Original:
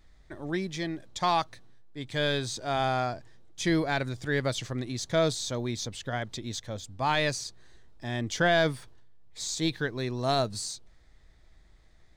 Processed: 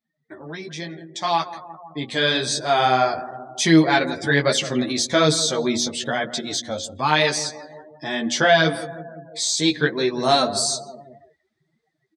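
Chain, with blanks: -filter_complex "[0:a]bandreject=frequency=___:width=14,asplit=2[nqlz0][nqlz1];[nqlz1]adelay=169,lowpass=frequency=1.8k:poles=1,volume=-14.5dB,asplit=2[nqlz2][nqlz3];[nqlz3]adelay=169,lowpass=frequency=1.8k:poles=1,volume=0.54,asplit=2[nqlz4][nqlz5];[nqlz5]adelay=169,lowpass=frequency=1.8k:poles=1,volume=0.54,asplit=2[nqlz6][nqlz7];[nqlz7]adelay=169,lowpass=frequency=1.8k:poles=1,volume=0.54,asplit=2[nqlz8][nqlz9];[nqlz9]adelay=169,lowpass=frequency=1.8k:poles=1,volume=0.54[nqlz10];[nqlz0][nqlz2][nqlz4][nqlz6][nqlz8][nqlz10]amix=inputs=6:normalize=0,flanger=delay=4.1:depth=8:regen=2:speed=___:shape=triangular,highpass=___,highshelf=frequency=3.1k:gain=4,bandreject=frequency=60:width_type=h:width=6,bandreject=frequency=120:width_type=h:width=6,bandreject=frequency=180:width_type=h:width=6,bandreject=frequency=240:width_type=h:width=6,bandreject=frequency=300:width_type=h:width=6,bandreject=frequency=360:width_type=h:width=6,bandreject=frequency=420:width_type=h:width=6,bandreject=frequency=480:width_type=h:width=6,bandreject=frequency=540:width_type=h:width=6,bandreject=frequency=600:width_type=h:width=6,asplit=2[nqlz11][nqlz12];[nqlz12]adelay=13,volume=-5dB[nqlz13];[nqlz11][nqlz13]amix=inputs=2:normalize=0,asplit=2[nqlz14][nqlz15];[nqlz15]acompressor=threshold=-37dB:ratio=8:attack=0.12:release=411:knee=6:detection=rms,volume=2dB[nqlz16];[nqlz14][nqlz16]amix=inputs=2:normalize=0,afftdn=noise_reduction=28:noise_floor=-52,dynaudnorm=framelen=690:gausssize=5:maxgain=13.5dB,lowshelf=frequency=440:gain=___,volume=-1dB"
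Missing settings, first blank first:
6.9k, 1.1, 200, 2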